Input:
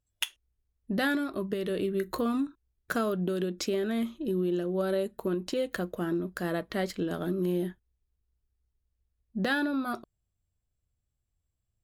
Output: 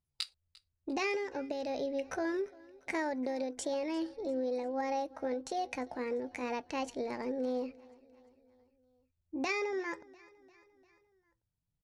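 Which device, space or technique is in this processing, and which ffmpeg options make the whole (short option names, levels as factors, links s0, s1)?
chipmunk voice: -af "asetrate=62367,aresample=44100,atempo=0.707107,lowpass=f=9400:w=0.5412,lowpass=f=9400:w=1.3066,aecho=1:1:348|696|1044|1392:0.0708|0.0404|0.023|0.0131,volume=0.531"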